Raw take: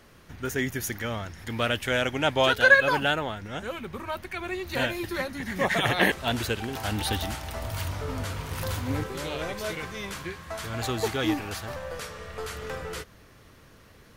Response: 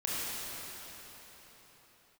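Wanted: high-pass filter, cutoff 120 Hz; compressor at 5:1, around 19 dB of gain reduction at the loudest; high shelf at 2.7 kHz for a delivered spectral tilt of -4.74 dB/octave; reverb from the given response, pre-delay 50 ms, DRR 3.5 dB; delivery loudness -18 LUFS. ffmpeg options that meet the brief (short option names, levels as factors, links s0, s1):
-filter_complex "[0:a]highpass=120,highshelf=f=2700:g=-6,acompressor=threshold=0.0178:ratio=5,asplit=2[s0][s1];[1:a]atrim=start_sample=2205,adelay=50[s2];[s1][s2]afir=irnorm=-1:irlink=0,volume=0.282[s3];[s0][s3]amix=inputs=2:normalize=0,volume=8.91"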